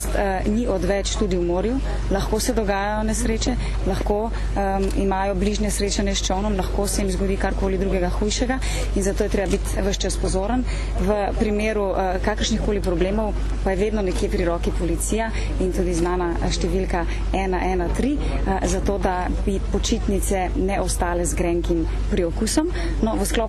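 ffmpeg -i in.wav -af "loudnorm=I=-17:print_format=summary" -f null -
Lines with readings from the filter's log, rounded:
Input Integrated:    -22.7 LUFS
Input True Peak:      -8.2 dBTP
Input LRA:             0.7 LU
Input Threshold:     -32.7 LUFS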